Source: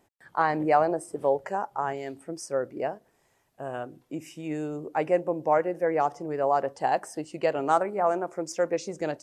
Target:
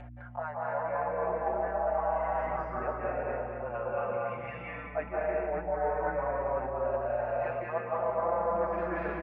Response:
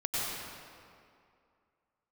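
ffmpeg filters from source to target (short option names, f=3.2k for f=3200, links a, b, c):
-filter_complex "[0:a]lowshelf=f=640:t=q:w=3:g=-9.5,asplit=2[a][b];[b]aecho=0:1:230|460|690|920|1150|1380:0.299|0.155|0.0807|0.042|0.0218|0.0114[c];[a][c]amix=inputs=2:normalize=0[d];[1:a]atrim=start_sample=2205,afade=t=out:st=0.34:d=0.01,atrim=end_sample=15435,asetrate=23814,aresample=44100[e];[d][e]afir=irnorm=-1:irlink=0,areverse,acompressor=threshold=-25dB:ratio=10,areverse,highpass=f=340:t=q:w=0.5412,highpass=f=340:t=q:w=1.307,lowpass=f=2.7k:t=q:w=0.5176,lowpass=f=2.7k:t=q:w=0.7071,lowpass=f=2.7k:t=q:w=1.932,afreqshift=-170,acompressor=mode=upward:threshold=-38dB:ratio=2.5,aeval=exprs='val(0)+0.00891*(sin(2*PI*60*n/s)+sin(2*PI*2*60*n/s)/2+sin(2*PI*3*60*n/s)/3+sin(2*PI*4*60*n/s)/4+sin(2*PI*5*60*n/s)/5)':c=same,asplit=2[f][g];[g]adelay=5.1,afreqshift=-0.28[h];[f][h]amix=inputs=2:normalize=1"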